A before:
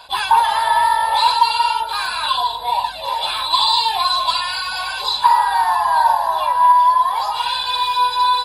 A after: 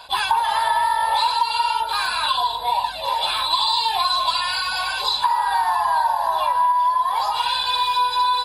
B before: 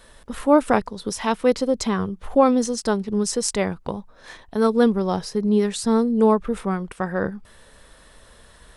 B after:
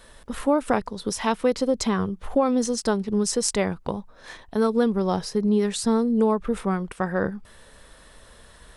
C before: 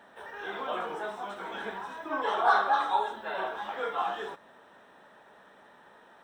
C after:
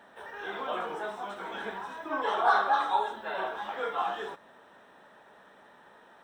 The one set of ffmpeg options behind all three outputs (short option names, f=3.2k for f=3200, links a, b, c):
-af "acompressor=threshold=-16dB:ratio=6"